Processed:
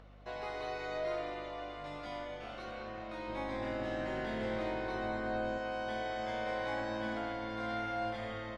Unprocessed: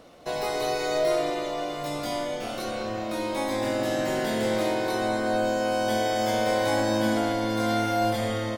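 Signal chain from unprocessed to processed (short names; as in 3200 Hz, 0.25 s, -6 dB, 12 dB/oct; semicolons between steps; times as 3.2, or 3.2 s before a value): LPF 1700 Hz 12 dB/oct; tilt shelf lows -8.5 dB, about 1300 Hz; upward compressor, threshold -51 dBFS; hum 50 Hz, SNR 17 dB; 3.28–5.58 low shelf 360 Hz +6.5 dB; gain -7.5 dB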